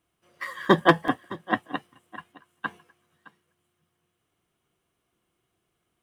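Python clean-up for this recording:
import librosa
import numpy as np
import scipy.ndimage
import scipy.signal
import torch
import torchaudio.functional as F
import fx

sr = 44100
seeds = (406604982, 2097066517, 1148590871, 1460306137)

y = fx.fix_declip(x, sr, threshold_db=-6.0)
y = fx.fix_interpolate(y, sr, at_s=(0.65, 1.08, 2.24, 3.47), length_ms=2.0)
y = fx.fix_echo_inverse(y, sr, delay_ms=615, level_db=-19.5)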